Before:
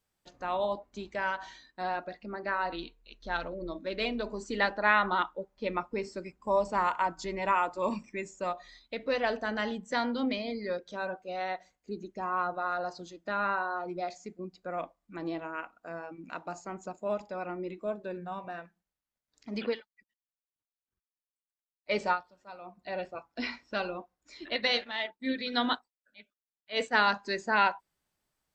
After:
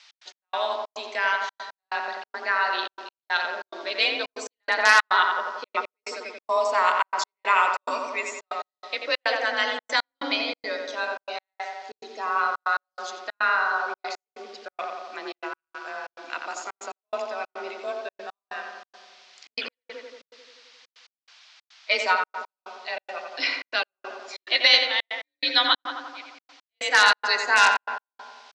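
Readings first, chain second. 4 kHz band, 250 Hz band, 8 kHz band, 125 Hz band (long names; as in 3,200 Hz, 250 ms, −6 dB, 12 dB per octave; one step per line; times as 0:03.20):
+13.0 dB, −7.0 dB, +15.5 dB, below −20 dB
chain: noise in a band 630–5,100 Hz −66 dBFS
in parallel at −8 dB: wrap-around overflow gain 13.5 dB
on the sum: low-pass filter 7,300 Hz 24 dB per octave
on a send: feedback echo with a low-pass in the loop 88 ms, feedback 73%, low-pass 2,200 Hz, level −3.5 dB
on the sum: frequency shifter +29 Hz
high-pass filter 310 Hz 24 dB per octave
tilt shelving filter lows −9.5 dB
gate pattern "x.x..xxx.xxxx" 141 BPM −60 dB
level +2 dB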